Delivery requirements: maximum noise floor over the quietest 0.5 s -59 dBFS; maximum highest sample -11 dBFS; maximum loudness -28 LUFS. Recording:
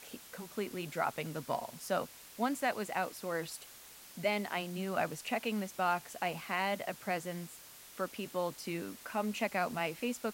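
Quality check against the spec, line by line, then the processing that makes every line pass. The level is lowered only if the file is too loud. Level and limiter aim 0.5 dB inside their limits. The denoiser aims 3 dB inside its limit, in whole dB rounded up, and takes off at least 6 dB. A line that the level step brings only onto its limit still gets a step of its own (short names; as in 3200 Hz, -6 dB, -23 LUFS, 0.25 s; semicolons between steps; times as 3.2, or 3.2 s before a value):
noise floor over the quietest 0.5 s -54 dBFS: fail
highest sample -19.0 dBFS: OK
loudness -36.5 LUFS: OK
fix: denoiser 8 dB, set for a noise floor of -54 dBFS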